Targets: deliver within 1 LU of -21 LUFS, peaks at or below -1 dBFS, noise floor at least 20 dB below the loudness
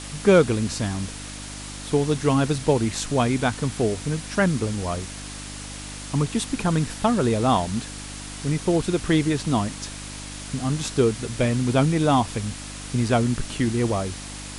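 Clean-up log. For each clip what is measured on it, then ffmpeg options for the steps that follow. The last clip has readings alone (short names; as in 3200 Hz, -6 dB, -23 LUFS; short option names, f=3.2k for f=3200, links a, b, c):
hum 50 Hz; harmonics up to 300 Hz; hum level -37 dBFS; noise floor -36 dBFS; noise floor target -44 dBFS; loudness -23.5 LUFS; peak -5.0 dBFS; loudness target -21.0 LUFS
-> -af "bandreject=f=50:t=h:w=4,bandreject=f=100:t=h:w=4,bandreject=f=150:t=h:w=4,bandreject=f=200:t=h:w=4,bandreject=f=250:t=h:w=4,bandreject=f=300:t=h:w=4"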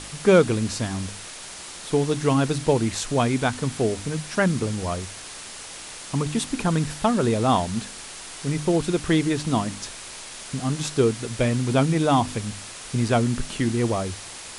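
hum none; noise floor -39 dBFS; noise floor target -44 dBFS
-> -af "afftdn=nr=6:nf=-39"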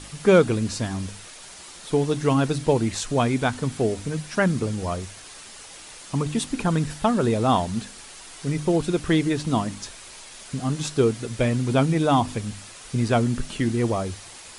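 noise floor -43 dBFS; noise floor target -44 dBFS
-> -af "afftdn=nr=6:nf=-43"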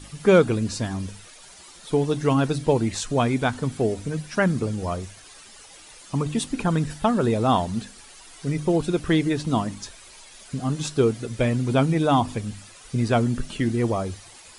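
noise floor -47 dBFS; loudness -24.0 LUFS; peak -5.5 dBFS; loudness target -21.0 LUFS
-> -af "volume=3dB"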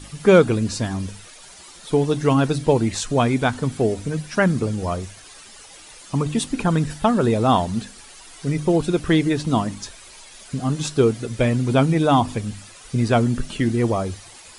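loudness -21.0 LUFS; peak -2.5 dBFS; noise floor -44 dBFS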